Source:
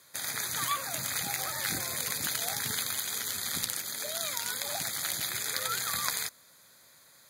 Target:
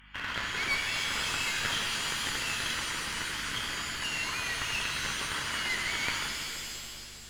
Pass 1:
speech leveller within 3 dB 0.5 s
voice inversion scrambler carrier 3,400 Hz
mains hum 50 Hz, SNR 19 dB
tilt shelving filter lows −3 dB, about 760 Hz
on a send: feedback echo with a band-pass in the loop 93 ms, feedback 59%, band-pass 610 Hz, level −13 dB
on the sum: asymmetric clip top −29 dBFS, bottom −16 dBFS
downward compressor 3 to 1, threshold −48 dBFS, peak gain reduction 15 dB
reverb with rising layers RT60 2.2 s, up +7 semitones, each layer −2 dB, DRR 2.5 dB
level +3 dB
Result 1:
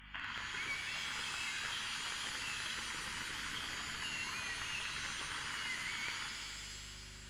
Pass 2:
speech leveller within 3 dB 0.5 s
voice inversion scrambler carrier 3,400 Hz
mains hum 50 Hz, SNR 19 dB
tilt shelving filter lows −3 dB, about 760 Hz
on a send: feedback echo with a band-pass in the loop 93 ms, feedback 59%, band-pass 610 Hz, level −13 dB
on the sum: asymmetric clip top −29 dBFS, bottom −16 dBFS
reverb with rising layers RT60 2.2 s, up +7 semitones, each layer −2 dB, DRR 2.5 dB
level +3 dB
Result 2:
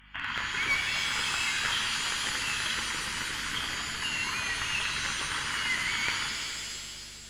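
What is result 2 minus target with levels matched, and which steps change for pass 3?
asymmetric clip: distortion −8 dB
change: asymmetric clip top −39.5 dBFS, bottom −16 dBFS

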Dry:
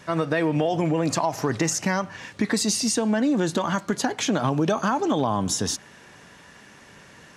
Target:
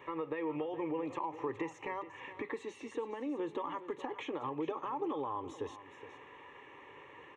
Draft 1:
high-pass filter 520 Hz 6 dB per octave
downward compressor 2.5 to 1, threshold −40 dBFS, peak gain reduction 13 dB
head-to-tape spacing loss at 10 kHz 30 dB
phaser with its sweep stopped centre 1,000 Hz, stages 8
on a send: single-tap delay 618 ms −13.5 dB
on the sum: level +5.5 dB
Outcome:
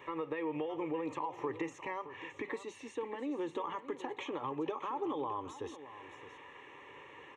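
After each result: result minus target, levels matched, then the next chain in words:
echo 200 ms late; 8,000 Hz band +3.5 dB
high-pass filter 520 Hz 6 dB per octave
downward compressor 2.5 to 1, threshold −40 dBFS, peak gain reduction 13 dB
head-to-tape spacing loss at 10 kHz 30 dB
phaser with its sweep stopped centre 1,000 Hz, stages 8
on a send: single-tap delay 418 ms −13.5 dB
on the sum: level +5.5 dB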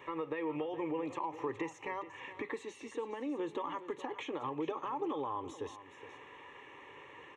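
8,000 Hz band +3.5 dB
high-pass filter 520 Hz 6 dB per octave
high-shelf EQ 3,600 Hz −7 dB
downward compressor 2.5 to 1, threshold −40 dBFS, peak gain reduction 12.5 dB
head-to-tape spacing loss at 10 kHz 30 dB
phaser with its sweep stopped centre 1,000 Hz, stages 8
on a send: single-tap delay 418 ms −13.5 dB
on the sum: level +5.5 dB

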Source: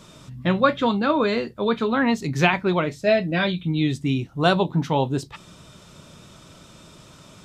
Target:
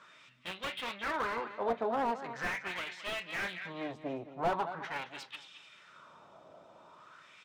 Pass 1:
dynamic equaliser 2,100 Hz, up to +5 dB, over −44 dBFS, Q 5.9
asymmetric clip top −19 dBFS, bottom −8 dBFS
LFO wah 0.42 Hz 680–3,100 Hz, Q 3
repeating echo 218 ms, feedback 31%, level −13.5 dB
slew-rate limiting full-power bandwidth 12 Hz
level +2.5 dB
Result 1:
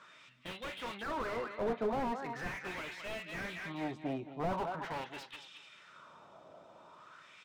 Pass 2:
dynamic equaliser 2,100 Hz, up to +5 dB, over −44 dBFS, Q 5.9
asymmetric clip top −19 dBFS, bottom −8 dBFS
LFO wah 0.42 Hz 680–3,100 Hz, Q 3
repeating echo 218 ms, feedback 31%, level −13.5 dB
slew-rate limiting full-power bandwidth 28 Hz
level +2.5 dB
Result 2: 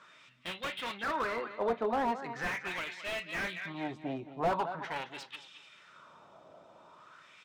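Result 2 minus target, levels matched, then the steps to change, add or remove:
asymmetric clip: distortion −5 dB
change: asymmetric clip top −29.5 dBFS, bottom −8 dBFS

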